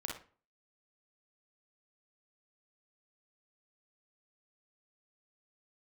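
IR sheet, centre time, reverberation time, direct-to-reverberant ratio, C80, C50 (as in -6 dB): 35 ms, 0.40 s, -1.0 dB, 11.0 dB, 2.5 dB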